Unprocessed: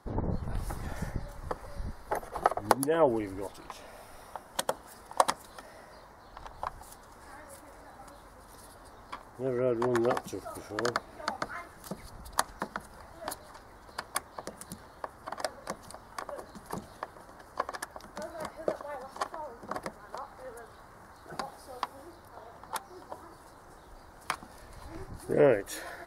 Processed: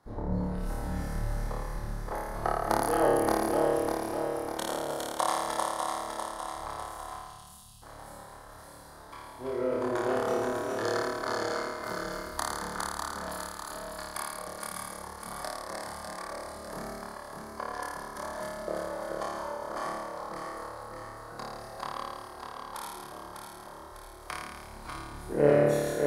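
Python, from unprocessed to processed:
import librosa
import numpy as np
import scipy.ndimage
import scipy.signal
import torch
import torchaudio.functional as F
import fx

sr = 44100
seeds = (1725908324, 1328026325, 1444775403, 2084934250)

y = fx.reverse_delay_fb(x, sr, ms=300, feedback_pct=72, wet_db=-2.5)
y = fx.spec_erase(y, sr, start_s=7.13, length_s=0.69, low_hz=230.0, high_hz=2500.0)
y = fx.room_flutter(y, sr, wall_m=4.7, rt60_s=1.4)
y = y * librosa.db_to_amplitude(-7.0)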